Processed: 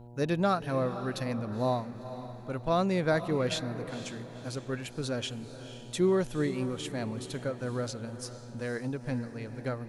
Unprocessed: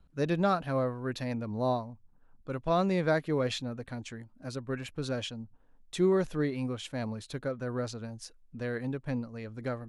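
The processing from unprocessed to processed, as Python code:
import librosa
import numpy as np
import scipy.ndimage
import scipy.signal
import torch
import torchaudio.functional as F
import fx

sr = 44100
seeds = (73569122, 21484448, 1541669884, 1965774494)

y = fx.high_shelf(x, sr, hz=7300.0, db=8.5)
y = fx.echo_diffused(y, sr, ms=489, feedback_pct=44, wet_db=-12.0)
y = fx.dmg_buzz(y, sr, base_hz=120.0, harmonics=8, level_db=-49.0, tilt_db=-6, odd_only=False)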